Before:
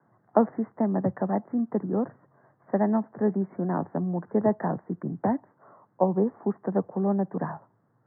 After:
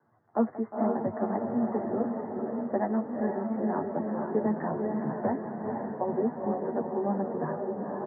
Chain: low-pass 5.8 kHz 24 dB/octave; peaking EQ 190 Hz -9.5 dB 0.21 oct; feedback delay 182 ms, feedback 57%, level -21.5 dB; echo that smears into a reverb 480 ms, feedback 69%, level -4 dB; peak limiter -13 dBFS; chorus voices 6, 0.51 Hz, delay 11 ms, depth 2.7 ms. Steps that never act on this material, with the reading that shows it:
low-pass 5.8 kHz: input has nothing above 1.1 kHz

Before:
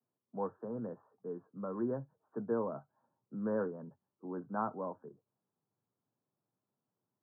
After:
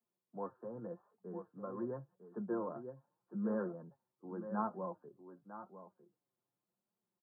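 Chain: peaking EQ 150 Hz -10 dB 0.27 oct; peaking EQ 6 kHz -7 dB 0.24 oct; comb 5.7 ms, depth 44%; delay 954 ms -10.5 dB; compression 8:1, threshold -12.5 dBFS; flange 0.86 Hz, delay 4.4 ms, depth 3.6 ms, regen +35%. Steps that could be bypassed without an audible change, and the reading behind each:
peaking EQ 6 kHz: input has nothing above 1.6 kHz; compression, threshold -12.5 dBFS: peak at its input -21.5 dBFS

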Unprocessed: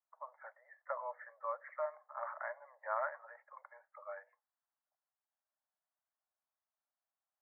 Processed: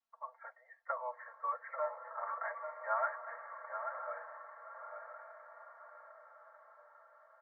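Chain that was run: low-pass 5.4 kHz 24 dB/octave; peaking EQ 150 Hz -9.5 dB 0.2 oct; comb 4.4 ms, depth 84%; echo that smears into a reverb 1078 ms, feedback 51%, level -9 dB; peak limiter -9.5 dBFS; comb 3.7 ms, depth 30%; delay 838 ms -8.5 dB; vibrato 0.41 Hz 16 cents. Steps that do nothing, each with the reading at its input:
low-pass 5.4 kHz: input has nothing above 2.2 kHz; peaking EQ 150 Hz: input has nothing below 450 Hz; peak limiter -9.5 dBFS: peak at its input -22.0 dBFS

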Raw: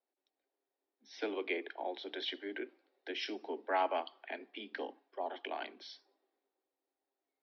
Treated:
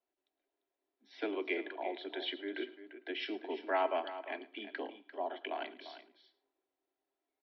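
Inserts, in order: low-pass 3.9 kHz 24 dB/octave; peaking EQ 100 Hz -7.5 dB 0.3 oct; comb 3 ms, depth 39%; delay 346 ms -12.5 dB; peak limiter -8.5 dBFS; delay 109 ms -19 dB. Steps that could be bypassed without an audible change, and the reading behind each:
peaking EQ 100 Hz: input has nothing below 200 Hz; peak limiter -8.5 dBFS: peak at its input -20.0 dBFS

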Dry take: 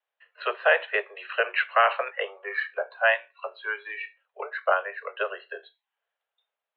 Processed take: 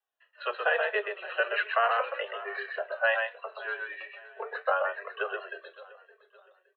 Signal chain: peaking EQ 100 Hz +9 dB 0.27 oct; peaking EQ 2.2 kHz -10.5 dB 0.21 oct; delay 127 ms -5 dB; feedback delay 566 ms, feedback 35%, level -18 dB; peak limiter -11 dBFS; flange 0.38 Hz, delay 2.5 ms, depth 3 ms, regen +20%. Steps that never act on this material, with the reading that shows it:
peaking EQ 100 Hz: input has nothing below 320 Hz

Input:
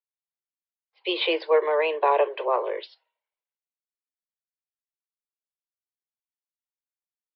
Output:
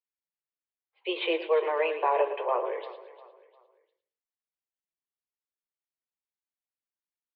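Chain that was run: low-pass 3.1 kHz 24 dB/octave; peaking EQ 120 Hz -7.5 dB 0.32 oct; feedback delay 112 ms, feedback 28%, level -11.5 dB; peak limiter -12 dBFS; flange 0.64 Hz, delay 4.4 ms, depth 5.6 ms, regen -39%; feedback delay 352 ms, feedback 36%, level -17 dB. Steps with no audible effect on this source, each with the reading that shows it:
peaking EQ 120 Hz: input has nothing below 300 Hz

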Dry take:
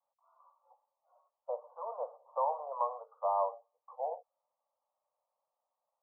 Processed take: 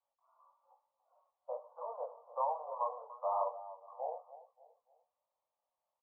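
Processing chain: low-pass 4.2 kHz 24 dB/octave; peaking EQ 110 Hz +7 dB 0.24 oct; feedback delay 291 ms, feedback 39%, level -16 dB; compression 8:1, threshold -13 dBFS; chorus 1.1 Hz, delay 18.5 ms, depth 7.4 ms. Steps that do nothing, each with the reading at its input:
low-pass 4.2 kHz: input has nothing above 1.3 kHz; peaking EQ 110 Hz: input has nothing below 430 Hz; compression, threshold -13 dBFS: peak at its input -19.5 dBFS

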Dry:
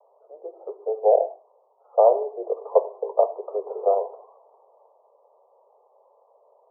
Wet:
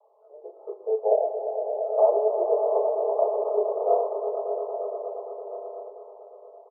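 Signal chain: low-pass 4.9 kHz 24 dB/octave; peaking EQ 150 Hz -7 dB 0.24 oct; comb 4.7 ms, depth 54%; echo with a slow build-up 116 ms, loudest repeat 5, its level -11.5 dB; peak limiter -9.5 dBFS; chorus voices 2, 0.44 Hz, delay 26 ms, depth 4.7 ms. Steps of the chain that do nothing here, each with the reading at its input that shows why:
low-pass 4.9 kHz: input has nothing above 1.2 kHz; peaking EQ 150 Hz: input has nothing below 340 Hz

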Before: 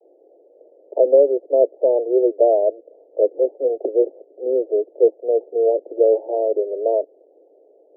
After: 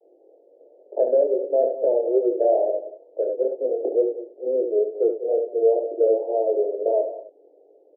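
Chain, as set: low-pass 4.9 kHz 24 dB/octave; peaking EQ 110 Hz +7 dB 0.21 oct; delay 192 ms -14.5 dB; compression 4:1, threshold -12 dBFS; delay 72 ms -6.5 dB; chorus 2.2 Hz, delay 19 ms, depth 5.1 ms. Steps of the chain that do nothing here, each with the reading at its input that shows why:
low-pass 4.9 kHz: input has nothing above 760 Hz; peaking EQ 110 Hz: input has nothing below 250 Hz

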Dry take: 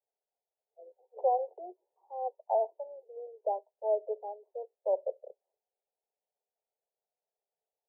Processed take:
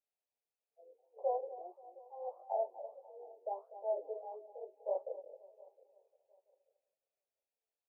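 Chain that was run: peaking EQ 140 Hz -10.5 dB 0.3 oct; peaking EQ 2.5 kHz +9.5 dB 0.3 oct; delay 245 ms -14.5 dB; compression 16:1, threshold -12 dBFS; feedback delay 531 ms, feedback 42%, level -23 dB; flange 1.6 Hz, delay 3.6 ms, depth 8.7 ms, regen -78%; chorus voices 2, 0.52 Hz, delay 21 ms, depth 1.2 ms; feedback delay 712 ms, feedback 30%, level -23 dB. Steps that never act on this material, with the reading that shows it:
peaking EQ 140 Hz: input has nothing below 360 Hz; peaking EQ 2.5 kHz: input has nothing above 1 kHz; compression, threshold -12 dBFS: peak at its input -17.5 dBFS

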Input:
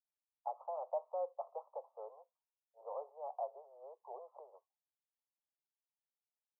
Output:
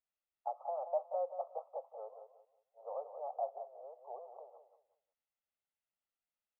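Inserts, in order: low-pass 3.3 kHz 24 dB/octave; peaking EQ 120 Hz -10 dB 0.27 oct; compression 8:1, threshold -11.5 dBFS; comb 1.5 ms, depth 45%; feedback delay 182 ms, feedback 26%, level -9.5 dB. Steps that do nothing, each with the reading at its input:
low-pass 3.3 kHz: input has nothing above 1.2 kHz; peaking EQ 120 Hz: input has nothing below 360 Hz; compression, threshold -11.5 dBFS: peak at its input -26.5 dBFS

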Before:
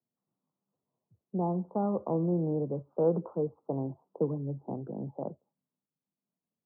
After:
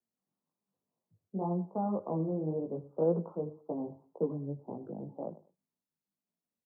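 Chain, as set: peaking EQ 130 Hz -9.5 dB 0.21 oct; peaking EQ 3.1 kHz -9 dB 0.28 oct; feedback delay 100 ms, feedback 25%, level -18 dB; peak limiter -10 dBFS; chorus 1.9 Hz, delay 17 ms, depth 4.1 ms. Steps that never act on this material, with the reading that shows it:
peaking EQ 3.1 kHz: input has nothing above 1.1 kHz; peak limiter -10 dBFS: peak at its input -17.0 dBFS

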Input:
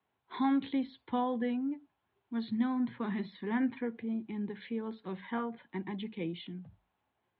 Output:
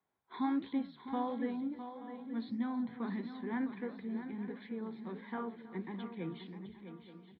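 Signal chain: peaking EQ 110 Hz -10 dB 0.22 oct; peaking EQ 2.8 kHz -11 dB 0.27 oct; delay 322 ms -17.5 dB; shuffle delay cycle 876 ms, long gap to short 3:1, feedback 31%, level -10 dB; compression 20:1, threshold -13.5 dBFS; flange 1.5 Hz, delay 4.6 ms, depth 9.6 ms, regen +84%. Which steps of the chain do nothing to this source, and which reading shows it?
compression, threshold -13.5 dBFS: peak at its input -19.0 dBFS

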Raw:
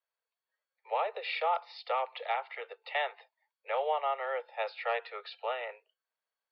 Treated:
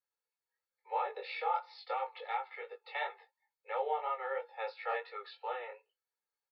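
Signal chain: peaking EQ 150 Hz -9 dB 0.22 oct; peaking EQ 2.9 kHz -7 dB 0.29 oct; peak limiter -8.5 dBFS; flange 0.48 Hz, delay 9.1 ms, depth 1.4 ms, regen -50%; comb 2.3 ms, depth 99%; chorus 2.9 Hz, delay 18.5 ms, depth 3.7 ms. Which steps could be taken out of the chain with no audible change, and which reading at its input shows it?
peaking EQ 150 Hz: input has nothing below 360 Hz; peak limiter -8.5 dBFS: peak at its input -19.0 dBFS

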